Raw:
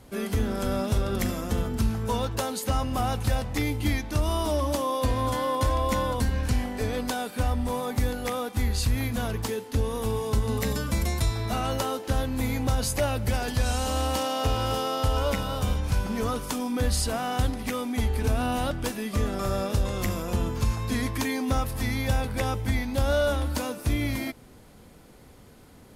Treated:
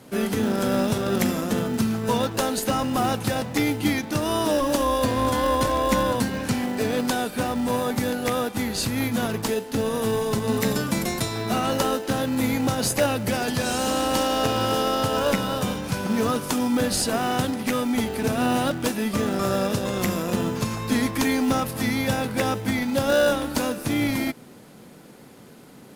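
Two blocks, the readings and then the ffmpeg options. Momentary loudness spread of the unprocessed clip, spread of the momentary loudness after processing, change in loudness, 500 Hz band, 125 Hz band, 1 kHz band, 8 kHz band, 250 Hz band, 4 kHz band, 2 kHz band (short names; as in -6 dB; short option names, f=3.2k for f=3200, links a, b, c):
4 LU, 4 LU, +4.0 dB, +5.5 dB, -2.5 dB, +4.5 dB, +5.0 dB, +7.0 dB, +5.0 dB, +5.5 dB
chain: -filter_complex "[0:a]highpass=f=140:w=0.5412,highpass=f=140:w=1.3066,asplit=2[a][b];[b]acrusher=samples=40:mix=1:aa=0.000001,volume=-8dB[c];[a][c]amix=inputs=2:normalize=0,volume=4.5dB"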